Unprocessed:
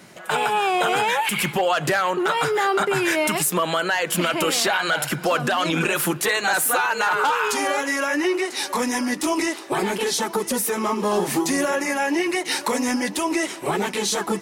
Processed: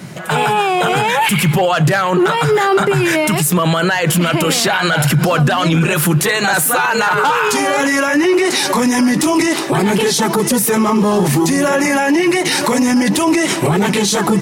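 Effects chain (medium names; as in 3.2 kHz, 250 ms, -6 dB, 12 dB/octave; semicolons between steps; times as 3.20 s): peaking EQ 140 Hz +15 dB 1.1 oct; level rider; loudness maximiser +15 dB; trim -5.5 dB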